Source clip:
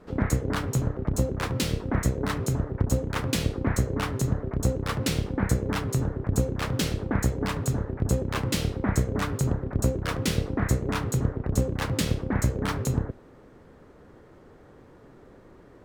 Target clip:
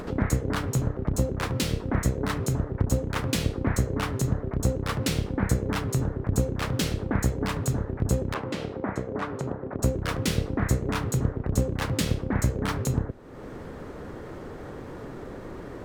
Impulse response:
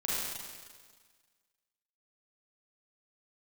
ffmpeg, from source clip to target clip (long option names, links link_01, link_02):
-filter_complex "[0:a]asettb=1/sr,asplit=3[link_01][link_02][link_03];[link_01]atrim=end=8.344[link_04];[link_02]atrim=start=8.34:end=9.83,asetpts=PTS-STARTPTS,afade=type=in:duration=0.004:curve=qsin,afade=type=out:start_time=1.486:duration=0.004:curve=qsin,bandpass=frequency=680:width_type=q:width=0.55:csg=0[link_05];[link_03]atrim=start=9.826[link_06];[link_04][link_05]acrossfade=duration=0.004:curve1=hsin:curve2=qsin[link_07];[link_07][link_06]acrossfade=duration=0.004:curve1=qsin:curve2=hsin,acompressor=mode=upward:threshold=-26dB:ratio=2.5"